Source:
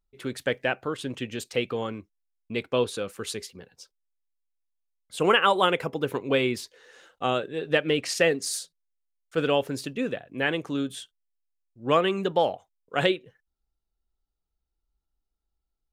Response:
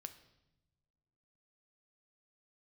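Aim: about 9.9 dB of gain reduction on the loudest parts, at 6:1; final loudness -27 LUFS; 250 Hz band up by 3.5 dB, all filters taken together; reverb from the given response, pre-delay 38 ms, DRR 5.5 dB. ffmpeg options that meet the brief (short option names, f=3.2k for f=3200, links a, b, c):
-filter_complex "[0:a]equalizer=f=250:t=o:g=4.5,acompressor=threshold=-26dB:ratio=6,asplit=2[a][b];[1:a]atrim=start_sample=2205,adelay=38[c];[b][c]afir=irnorm=-1:irlink=0,volume=-0.5dB[d];[a][d]amix=inputs=2:normalize=0,volume=4.5dB"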